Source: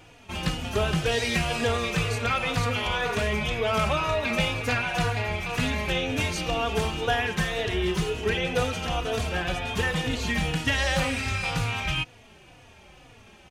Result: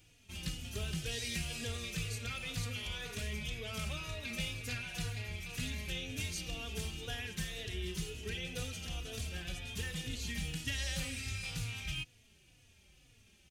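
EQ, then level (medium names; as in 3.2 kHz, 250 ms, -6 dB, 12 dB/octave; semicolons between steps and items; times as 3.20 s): tilt EQ +2.5 dB/octave; amplifier tone stack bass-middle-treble 10-0-1; +8.0 dB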